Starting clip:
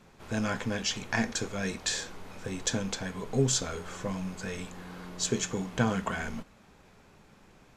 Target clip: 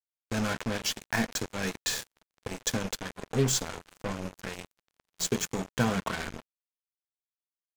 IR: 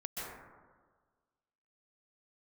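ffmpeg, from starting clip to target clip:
-af "acrusher=bits=4:mix=0:aa=0.5"

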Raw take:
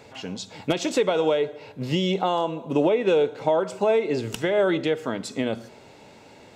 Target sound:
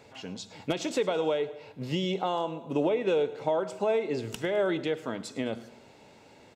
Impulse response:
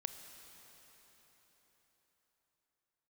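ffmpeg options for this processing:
-af "aecho=1:1:105|210|315|420:0.112|0.0539|0.0259|0.0124,volume=-6dB"

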